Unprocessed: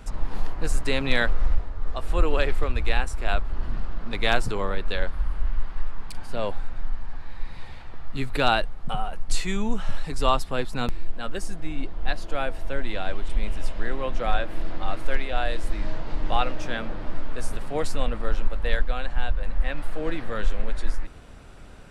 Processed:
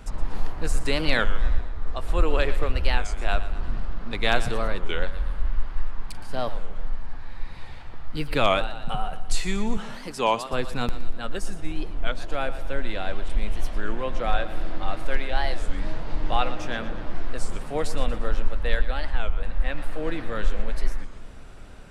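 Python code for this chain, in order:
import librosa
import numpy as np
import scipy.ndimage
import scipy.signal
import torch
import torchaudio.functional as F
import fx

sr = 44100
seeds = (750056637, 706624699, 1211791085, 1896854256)

y = fx.highpass(x, sr, hz=190.0, slope=12, at=(9.77, 10.53))
y = fx.echo_split(y, sr, split_hz=350.0, low_ms=180, high_ms=118, feedback_pct=52, wet_db=-14.0)
y = fx.record_warp(y, sr, rpm=33.33, depth_cents=250.0)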